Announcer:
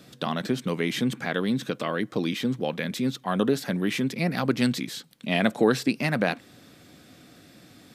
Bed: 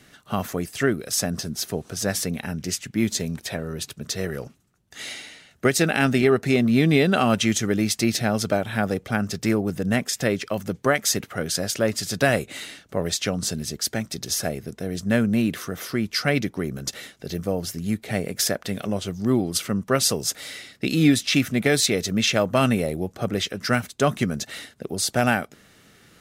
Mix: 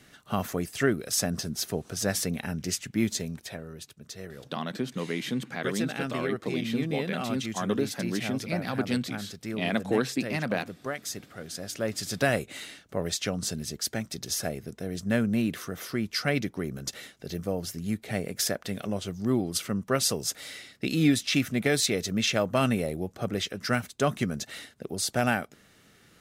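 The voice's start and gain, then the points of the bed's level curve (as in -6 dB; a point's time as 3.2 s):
4.30 s, -5.0 dB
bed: 2.95 s -3 dB
3.92 s -13.5 dB
11.49 s -13.5 dB
12.04 s -5 dB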